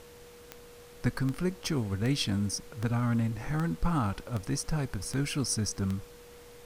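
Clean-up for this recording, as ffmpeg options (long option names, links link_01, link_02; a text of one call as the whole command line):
ffmpeg -i in.wav -af "adeclick=threshold=4,bandreject=frequency=480:width=30,afftdn=noise_reduction=26:noise_floor=-51" out.wav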